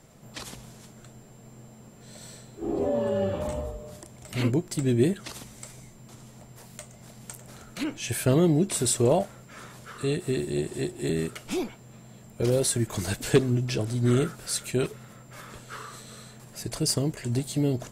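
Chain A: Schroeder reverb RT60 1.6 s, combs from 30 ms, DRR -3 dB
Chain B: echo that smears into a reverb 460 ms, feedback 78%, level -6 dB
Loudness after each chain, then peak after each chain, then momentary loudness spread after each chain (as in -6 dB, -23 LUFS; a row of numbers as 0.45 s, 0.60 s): -23.0 LUFS, -26.5 LUFS; -6.0 dBFS, -9.0 dBFS; 21 LU, 18 LU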